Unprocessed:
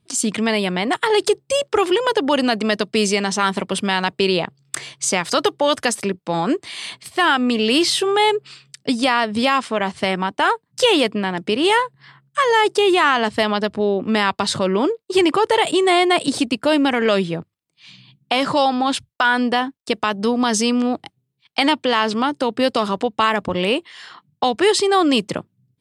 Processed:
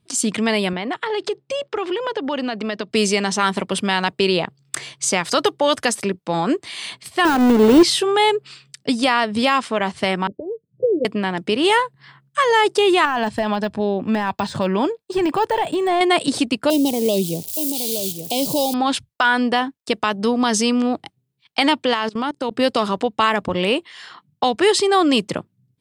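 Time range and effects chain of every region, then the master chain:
0:00.73–0:02.91: band-pass filter 120–4,200 Hz + downward compressor 2 to 1, threshold −24 dBFS
0:07.25–0:07.83: each half-wave held at its own peak + de-essing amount 100% + parametric band 390 Hz +5 dB 1 octave
0:10.27–0:11.05: Chebyshev low-pass filter 570 Hz, order 6 + notch comb filter 280 Hz
0:13.05–0:16.01: de-essing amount 80% + comb filter 1.2 ms, depth 33%
0:16.70–0:18.74: spike at every zero crossing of −16 dBFS + Butterworth band-reject 1,500 Hz, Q 0.51 + single-tap delay 869 ms −9 dB
0:21.94–0:22.51: output level in coarse steps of 22 dB + floating-point word with a short mantissa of 8 bits
whole clip: no processing

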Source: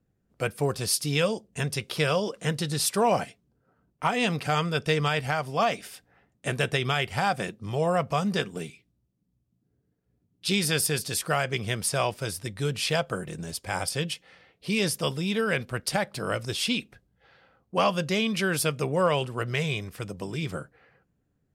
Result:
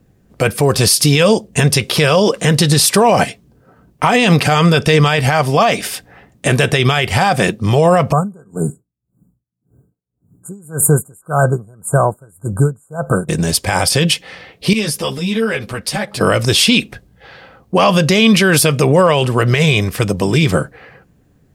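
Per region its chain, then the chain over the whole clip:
0:08.12–0:13.29: linear-phase brick-wall band-stop 1,600–6,800 Hz + parametric band 140 Hz +4.5 dB 0.93 octaves + tremolo with a sine in dB 1.8 Hz, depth 35 dB
0:14.73–0:16.21: downward compressor 2 to 1, threshold −39 dBFS + string-ensemble chorus
whole clip: notch filter 1,400 Hz, Q 16; boost into a limiter +21 dB; level −1 dB

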